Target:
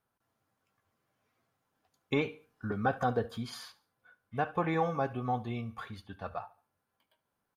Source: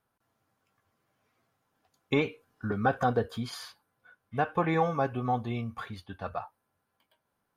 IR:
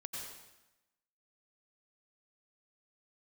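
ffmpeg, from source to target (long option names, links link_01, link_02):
-af "aecho=1:1:71|142|213:0.1|0.035|0.0123,volume=-3.5dB"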